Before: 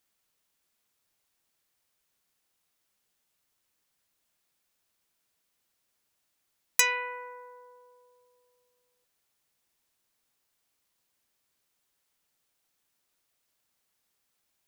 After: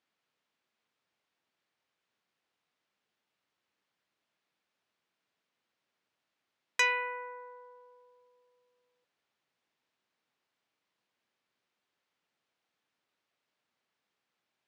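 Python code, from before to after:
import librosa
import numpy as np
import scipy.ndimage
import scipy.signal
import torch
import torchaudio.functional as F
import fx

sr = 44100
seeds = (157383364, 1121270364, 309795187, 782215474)

y = fx.bandpass_edges(x, sr, low_hz=140.0, high_hz=3400.0)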